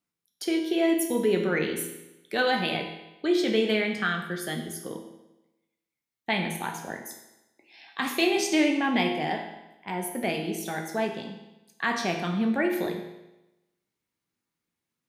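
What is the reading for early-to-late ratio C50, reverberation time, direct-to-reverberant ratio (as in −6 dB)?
6.0 dB, 1.0 s, 3.0 dB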